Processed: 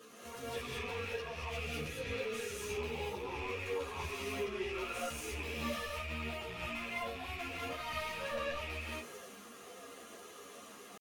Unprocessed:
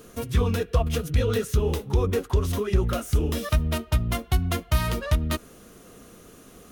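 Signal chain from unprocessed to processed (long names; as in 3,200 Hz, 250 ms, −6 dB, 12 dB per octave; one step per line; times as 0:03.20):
loose part that buzzes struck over −26 dBFS, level −20 dBFS
high-pass filter 290 Hz 6 dB per octave
notch filter 1,500 Hz, Q 7.9
harmonic and percussive parts rebalanced percussive −6 dB
downward compressor 16 to 1, threshold −32 dBFS, peak gain reduction 10 dB
brickwall limiter −28.5 dBFS, peak gain reduction 8 dB
transient designer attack 0 dB, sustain +5 dB
tempo change 0.61×
mid-hump overdrive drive 14 dB, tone 3,900 Hz, clips at −26.5 dBFS
flanger 0.75 Hz, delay 0.6 ms, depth 2.6 ms, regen −46%
reverb whose tail is shaped and stops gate 250 ms rising, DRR −5 dB
string-ensemble chorus
level −1.5 dB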